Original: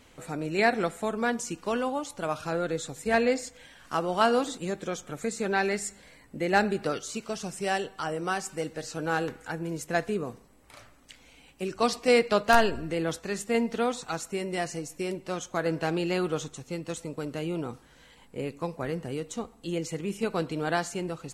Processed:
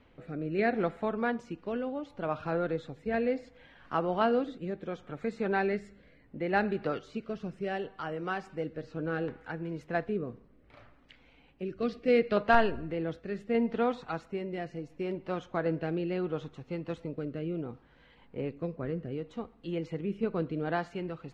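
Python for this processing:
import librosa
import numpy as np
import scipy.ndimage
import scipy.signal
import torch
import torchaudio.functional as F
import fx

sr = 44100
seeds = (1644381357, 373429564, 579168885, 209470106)

y = fx.peak_eq(x, sr, hz=910.0, db=-14.5, octaves=0.53, at=(11.62, 12.37))
y = fx.rotary(y, sr, hz=0.7)
y = fx.air_absorb(y, sr, metres=350.0)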